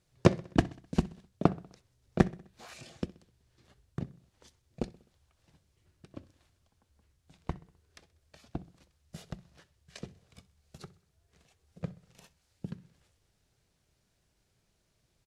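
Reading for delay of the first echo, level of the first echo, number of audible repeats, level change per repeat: 64 ms, −21.5 dB, 3, −5.5 dB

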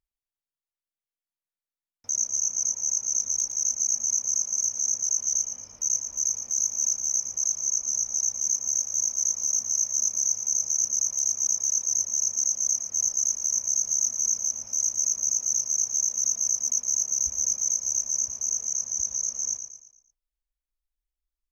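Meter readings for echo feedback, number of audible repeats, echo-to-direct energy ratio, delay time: 42%, 4, −7.5 dB, 114 ms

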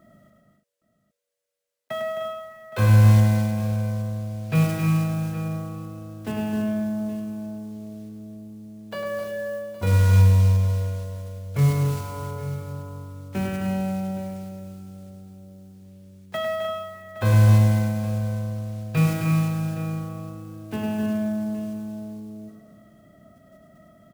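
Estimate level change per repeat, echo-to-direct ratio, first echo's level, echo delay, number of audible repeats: repeats not evenly spaced, −2.5 dB, −6.0 dB, 103 ms, 5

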